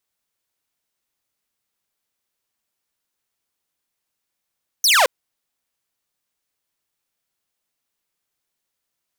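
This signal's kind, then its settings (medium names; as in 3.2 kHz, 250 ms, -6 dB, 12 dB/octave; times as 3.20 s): laser zap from 6.4 kHz, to 470 Hz, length 0.22 s saw, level -9 dB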